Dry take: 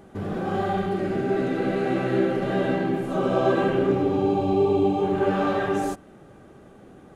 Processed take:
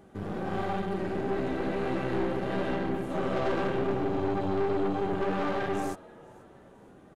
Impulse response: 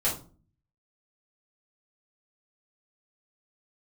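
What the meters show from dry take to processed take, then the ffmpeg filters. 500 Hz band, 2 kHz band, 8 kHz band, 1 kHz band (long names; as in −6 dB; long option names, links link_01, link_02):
−7.0 dB, −5.0 dB, can't be measured, −6.0 dB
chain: -filter_complex "[0:a]asplit=4[link_01][link_02][link_03][link_04];[link_02]adelay=482,afreqshift=80,volume=-23.5dB[link_05];[link_03]adelay=964,afreqshift=160,volume=-30.2dB[link_06];[link_04]adelay=1446,afreqshift=240,volume=-37dB[link_07];[link_01][link_05][link_06][link_07]amix=inputs=4:normalize=0,aeval=exprs='(tanh(14.1*val(0)+0.75)-tanh(0.75))/14.1':channel_layout=same,volume=-1.5dB"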